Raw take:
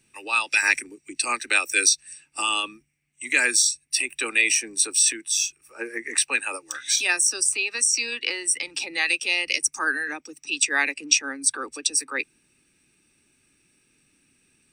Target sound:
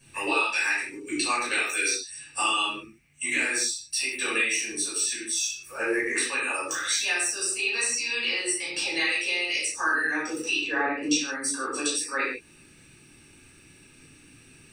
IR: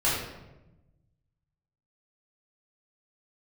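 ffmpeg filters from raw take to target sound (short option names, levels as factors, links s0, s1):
-filter_complex "[0:a]asplit=3[s0][s1][s2];[s0]afade=t=out:st=10.56:d=0.02[s3];[s1]lowpass=1100,afade=t=in:st=10.56:d=0.02,afade=t=out:st=11.01:d=0.02[s4];[s2]afade=t=in:st=11.01:d=0.02[s5];[s3][s4][s5]amix=inputs=3:normalize=0,acompressor=threshold=0.0178:ratio=6[s6];[1:a]atrim=start_sample=2205,afade=t=out:st=0.23:d=0.01,atrim=end_sample=10584[s7];[s6][s7]afir=irnorm=-1:irlink=0"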